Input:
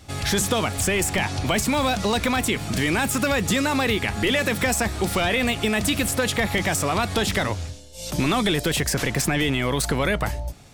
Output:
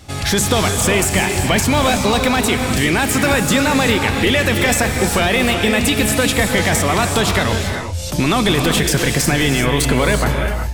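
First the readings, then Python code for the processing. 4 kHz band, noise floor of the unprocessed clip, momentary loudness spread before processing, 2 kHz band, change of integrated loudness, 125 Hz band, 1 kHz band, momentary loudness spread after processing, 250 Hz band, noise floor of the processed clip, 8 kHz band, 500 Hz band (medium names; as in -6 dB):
+7.0 dB, -37 dBFS, 3 LU, +7.0 dB, +7.0 dB, +8.0 dB, +7.0 dB, 3 LU, +7.0 dB, -23 dBFS, +7.0 dB, +7.0 dB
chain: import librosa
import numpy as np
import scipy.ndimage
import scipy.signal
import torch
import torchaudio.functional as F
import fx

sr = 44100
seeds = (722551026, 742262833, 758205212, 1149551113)

y = fx.rev_gated(x, sr, seeds[0], gate_ms=410, shape='rising', drr_db=4.0)
y = y * librosa.db_to_amplitude(5.5)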